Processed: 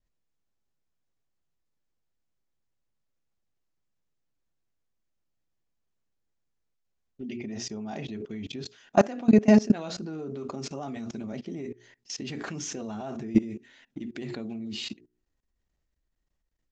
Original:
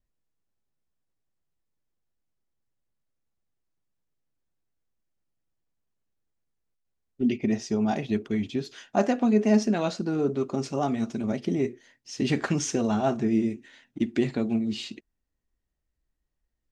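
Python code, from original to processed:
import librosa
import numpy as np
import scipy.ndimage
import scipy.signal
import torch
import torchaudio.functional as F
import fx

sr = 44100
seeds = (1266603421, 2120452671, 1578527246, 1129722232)

y = scipy.signal.sosfilt(scipy.signal.butter(12, 7700.0, 'lowpass', fs=sr, output='sos'), x)
y = fx.hum_notches(y, sr, base_hz=60, count=7)
y = fx.level_steps(y, sr, step_db=21)
y = y * librosa.db_to_amplitude(6.5)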